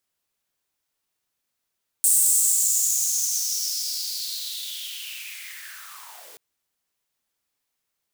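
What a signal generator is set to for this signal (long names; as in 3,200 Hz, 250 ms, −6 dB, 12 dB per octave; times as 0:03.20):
filter sweep on noise white, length 4.33 s highpass, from 8,500 Hz, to 380 Hz, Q 5.6, linear, gain ramp −24 dB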